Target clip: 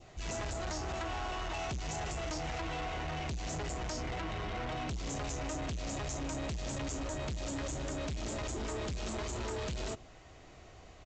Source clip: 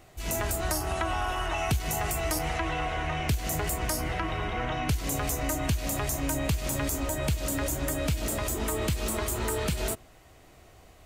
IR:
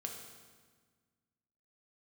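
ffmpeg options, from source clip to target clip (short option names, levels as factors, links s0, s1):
-af "adynamicequalizer=threshold=0.00447:dfrequency=1600:dqfactor=1.2:tfrequency=1600:tqfactor=1.2:attack=5:release=100:ratio=0.375:range=2:mode=cutabove:tftype=bell,aresample=16000,asoftclip=type=tanh:threshold=0.0178,aresample=44100"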